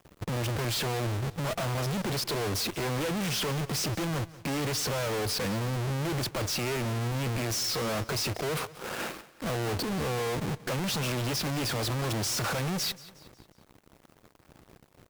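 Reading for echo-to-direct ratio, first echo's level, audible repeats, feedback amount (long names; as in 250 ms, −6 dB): −18.0 dB, −19.0 dB, 3, 46%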